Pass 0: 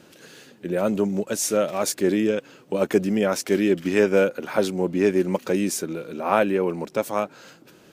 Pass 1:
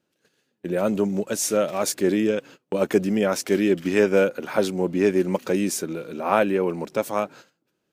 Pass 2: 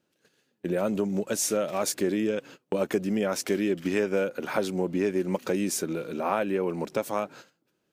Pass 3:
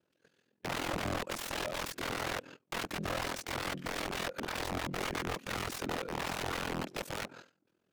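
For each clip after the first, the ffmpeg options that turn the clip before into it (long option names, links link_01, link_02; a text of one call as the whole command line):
ffmpeg -i in.wav -af "agate=range=-24dB:threshold=-42dB:ratio=16:detection=peak" out.wav
ffmpeg -i in.wav -af "acompressor=threshold=-24dB:ratio=3" out.wav
ffmpeg -i in.wav -af "aeval=exprs='(mod(22.4*val(0)+1,2)-1)/22.4':channel_layout=same,aeval=exprs='val(0)*sin(2*PI*21*n/s)':channel_layout=same,aemphasis=mode=reproduction:type=cd" out.wav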